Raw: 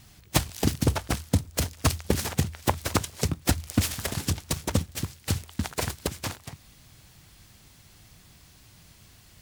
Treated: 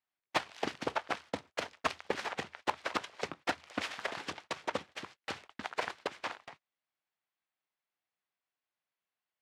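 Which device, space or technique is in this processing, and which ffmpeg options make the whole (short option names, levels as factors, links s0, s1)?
walkie-talkie: -af "highpass=590,lowpass=2500,asoftclip=type=hard:threshold=0.1,agate=range=0.0282:threshold=0.00282:ratio=16:detection=peak"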